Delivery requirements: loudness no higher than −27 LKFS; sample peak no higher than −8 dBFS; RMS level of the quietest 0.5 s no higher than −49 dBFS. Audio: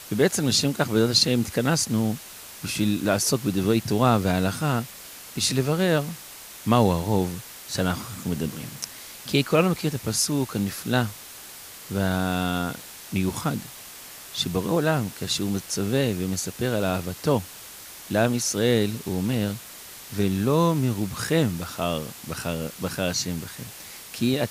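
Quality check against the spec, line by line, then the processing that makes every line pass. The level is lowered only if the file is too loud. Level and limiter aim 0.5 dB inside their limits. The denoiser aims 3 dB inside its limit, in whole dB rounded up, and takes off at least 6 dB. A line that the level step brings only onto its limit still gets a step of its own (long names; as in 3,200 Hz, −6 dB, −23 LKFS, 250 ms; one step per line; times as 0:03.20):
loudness −24.5 LKFS: out of spec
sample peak −5.0 dBFS: out of spec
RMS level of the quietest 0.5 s −42 dBFS: out of spec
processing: broadband denoise 7 dB, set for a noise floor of −42 dBFS
level −3 dB
brickwall limiter −8.5 dBFS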